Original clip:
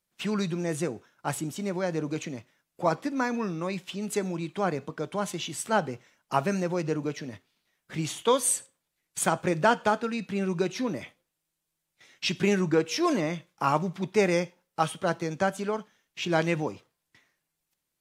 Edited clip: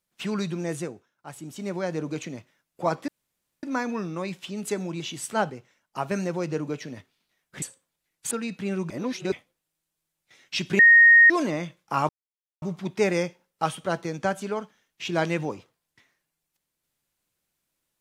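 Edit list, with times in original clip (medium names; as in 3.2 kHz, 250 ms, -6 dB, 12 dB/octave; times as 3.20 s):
0.70–1.71 s: dip -11 dB, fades 0.36 s
3.08 s: insert room tone 0.55 s
4.45–5.36 s: delete
5.86–6.47 s: gain -4.5 dB
7.98–8.54 s: delete
9.23–10.01 s: delete
10.60–11.02 s: reverse
12.49–13.00 s: bleep 1.86 kHz -10 dBFS
13.79 s: insert silence 0.53 s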